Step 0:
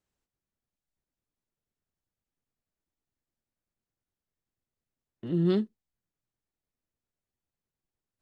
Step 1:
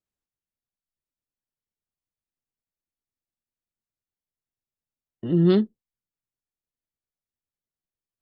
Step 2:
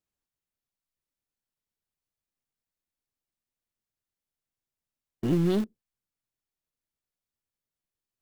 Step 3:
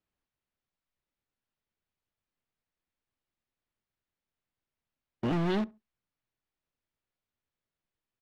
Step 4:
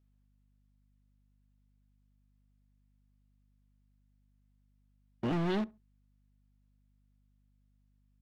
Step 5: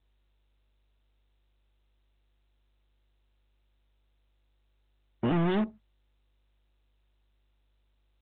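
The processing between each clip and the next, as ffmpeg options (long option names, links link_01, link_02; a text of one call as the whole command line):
ffmpeg -i in.wav -af "afftdn=noise_reduction=15:noise_floor=-56,volume=7dB" out.wav
ffmpeg -i in.wav -filter_complex "[0:a]acompressor=threshold=-23dB:ratio=20,asplit=2[link_01][link_02];[link_02]acrusher=bits=3:dc=4:mix=0:aa=0.000001,volume=-6dB[link_03];[link_01][link_03]amix=inputs=2:normalize=0,volume=1dB" out.wav
ffmpeg -i in.wav -filter_complex "[0:a]lowpass=3300,acrossover=split=750[link_01][link_02];[link_01]volume=31dB,asoftclip=hard,volume=-31dB[link_03];[link_03][link_02]amix=inputs=2:normalize=0,asplit=2[link_04][link_05];[link_05]adelay=68,lowpass=frequency=1200:poles=1,volume=-21.5dB,asplit=2[link_06][link_07];[link_07]adelay=68,lowpass=frequency=1200:poles=1,volume=0.25[link_08];[link_04][link_06][link_08]amix=inputs=3:normalize=0,volume=3.5dB" out.wav
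ffmpeg -i in.wav -af "aeval=exprs='val(0)+0.000501*(sin(2*PI*50*n/s)+sin(2*PI*2*50*n/s)/2+sin(2*PI*3*50*n/s)/3+sin(2*PI*4*50*n/s)/4+sin(2*PI*5*50*n/s)/5)':channel_layout=same,volume=-2.5dB" out.wav
ffmpeg -i in.wav -filter_complex "[0:a]afftdn=noise_reduction=26:noise_floor=-53,asplit=2[link_01][link_02];[link_02]alimiter=level_in=8dB:limit=-24dB:level=0:latency=1:release=25,volume=-8dB,volume=3dB[link_03];[link_01][link_03]amix=inputs=2:normalize=0" -ar 8000 -c:a adpcm_g726 -b:a 40k out.wav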